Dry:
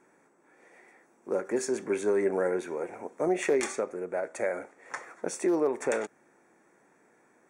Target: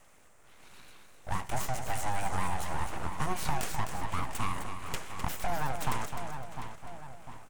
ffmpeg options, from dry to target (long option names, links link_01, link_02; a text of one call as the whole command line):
ffmpeg -i in.wav -filter_complex "[0:a]crystalizer=i=1.5:c=0,equalizer=frequency=250:width_type=o:width=0.25:gain=7,asplit=2[link_01][link_02];[link_02]adelay=699,lowpass=frequency=1900:poles=1,volume=-14.5dB,asplit=2[link_03][link_04];[link_04]adelay=699,lowpass=frequency=1900:poles=1,volume=0.48,asplit=2[link_05][link_06];[link_06]adelay=699,lowpass=frequency=1900:poles=1,volume=0.48,asplit=2[link_07][link_08];[link_08]adelay=699,lowpass=frequency=1900:poles=1,volume=0.48[link_09];[link_03][link_05][link_07][link_09]amix=inputs=4:normalize=0[link_10];[link_01][link_10]amix=inputs=2:normalize=0,acrossover=split=370|1700|4000[link_11][link_12][link_13][link_14];[link_11]acompressor=threshold=-44dB:ratio=4[link_15];[link_12]acompressor=threshold=-32dB:ratio=4[link_16];[link_13]acompressor=threshold=-54dB:ratio=4[link_17];[link_14]acompressor=threshold=-41dB:ratio=4[link_18];[link_15][link_16][link_17][link_18]amix=inputs=4:normalize=0,aeval=exprs='abs(val(0))':channel_layout=same,asplit=2[link_19][link_20];[link_20]aecho=0:1:256|512|768:0.398|0.115|0.0335[link_21];[link_19][link_21]amix=inputs=2:normalize=0,volume=4dB" out.wav